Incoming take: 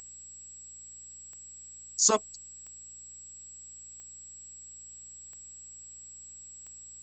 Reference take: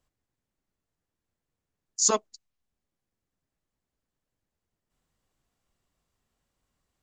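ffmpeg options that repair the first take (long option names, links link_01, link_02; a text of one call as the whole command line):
ffmpeg -i in.wav -af "adeclick=threshold=4,bandreject=frequency=59:width_type=h:width=4,bandreject=frequency=118:width_type=h:width=4,bandreject=frequency=177:width_type=h:width=4,bandreject=frequency=236:width_type=h:width=4,bandreject=frequency=7700:width=30,afftdn=noise_reduction=30:noise_floor=-48" out.wav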